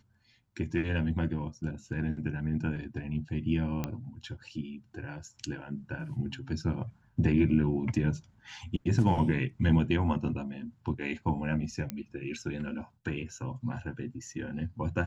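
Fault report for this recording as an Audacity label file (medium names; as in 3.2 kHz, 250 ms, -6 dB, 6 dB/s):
3.840000	3.840000	pop -18 dBFS
11.900000	11.900000	pop -18 dBFS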